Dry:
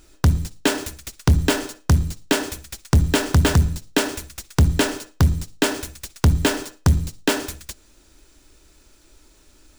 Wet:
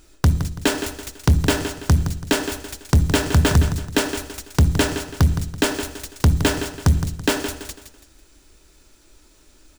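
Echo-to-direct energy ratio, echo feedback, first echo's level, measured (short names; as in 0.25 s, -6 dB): -9.5 dB, 35%, -10.0 dB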